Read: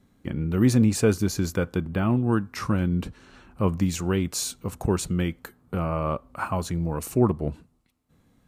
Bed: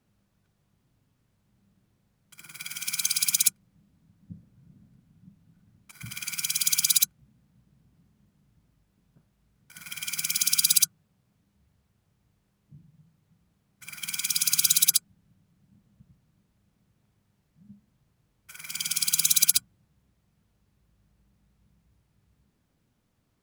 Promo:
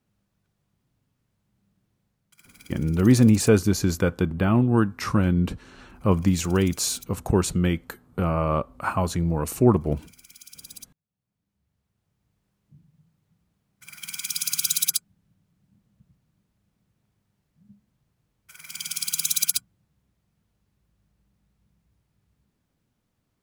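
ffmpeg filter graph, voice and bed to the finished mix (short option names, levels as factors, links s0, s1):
-filter_complex "[0:a]adelay=2450,volume=1.41[s0];[1:a]volume=7.08,afade=t=out:st=2.02:d=0.85:silence=0.105925,afade=t=in:st=11.06:d=1.4:silence=0.1[s1];[s0][s1]amix=inputs=2:normalize=0"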